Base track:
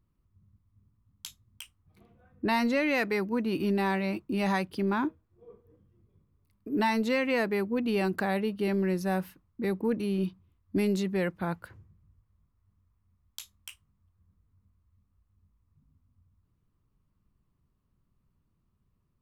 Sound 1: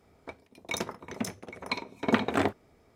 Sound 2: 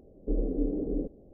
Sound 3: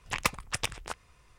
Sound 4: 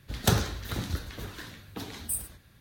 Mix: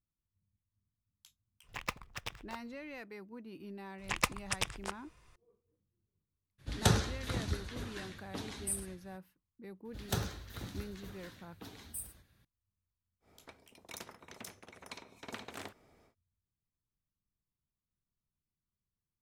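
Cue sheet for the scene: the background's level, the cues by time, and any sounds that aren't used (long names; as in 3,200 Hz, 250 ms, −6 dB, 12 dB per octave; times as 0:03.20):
base track −19.5 dB
0:01.63: mix in 3 −9.5 dB + running median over 5 samples
0:03.98: mix in 3 −3 dB
0:06.58: mix in 4 −3.5 dB, fades 0.02 s + low-pass filter 11,000 Hz 24 dB per octave
0:09.85: mix in 4 −11 dB
0:13.20: mix in 1 −17 dB, fades 0.10 s + every bin compressed towards the loudest bin 2 to 1
not used: 2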